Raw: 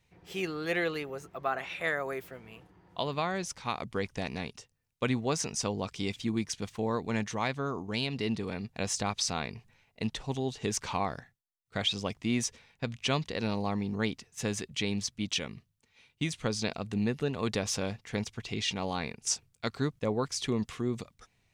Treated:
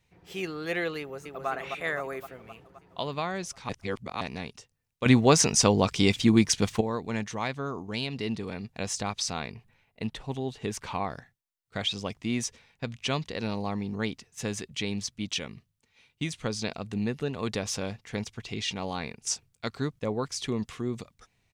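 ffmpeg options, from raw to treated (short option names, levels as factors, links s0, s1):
-filter_complex "[0:a]asplit=2[s0][s1];[s1]afade=t=in:st=0.99:d=0.01,afade=t=out:st=1.48:d=0.01,aecho=0:1:260|520|780|1040|1300|1560|1820|2080|2340|2600:0.595662|0.38718|0.251667|0.163584|0.106329|0.0691141|0.0449242|0.0292007|0.0189805|0.0123373[s2];[s0][s2]amix=inputs=2:normalize=0,asettb=1/sr,asplit=3[s3][s4][s5];[s3]atrim=end=9.524[s6];[s4]atrim=start=9.52:end=11.1,asetpts=PTS-STARTPTS,afade=t=in:d=0.004:c=qsin,afade=t=out:st=1.576:d=0.004:c=qsin,equalizer=f=6100:t=o:w=1.1:g=-7[s7];[s5]atrim=start=11.096[s8];[s6][s7]acrossfade=d=0.004:c1=hsin:c2=qsin[s9];[s9][s8]acrossfade=d=0.004:c1=qsin:c2=hsin,asplit=5[s10][s11][s12][s13][s14];[s10]atrim=end=3.692[s15];[s11]atrim=start=3.688:end=4.212,asetpts=PTS-STARTPTS,areverse[s16];[s12]atrim=start=4.208:end=5.062[s17];[s13]atrim=start=5.058:end=6.812,asetpts=PTS-STARTPTS,volume=3.55[s18];[s14]atrim=start=6.808[s19];[s15][s16]acrossfade=d=0.004:c1=hsin:c2=hsin[s20];[s20][s17]acrossfade=d=0.004:c1=hsin:c2=hsin[s21];[s21][s18]acrossfade=d=0.004:c1=hsin:c2=hsin[s22];[s22][s19]acrossfade=d=0.004:c1=hsin:c2=hsin"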